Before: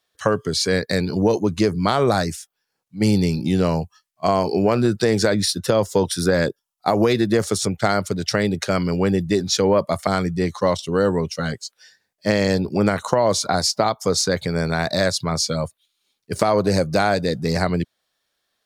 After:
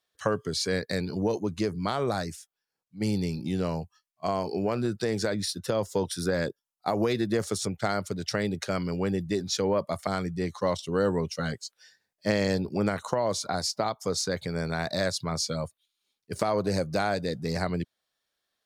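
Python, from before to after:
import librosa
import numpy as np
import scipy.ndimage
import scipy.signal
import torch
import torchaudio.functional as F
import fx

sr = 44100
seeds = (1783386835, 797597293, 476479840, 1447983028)

y = fx.rider(x, sr, range_db=10, speed_s=2.0)
y = y * 10.0 ** (-9.0 / 20.0)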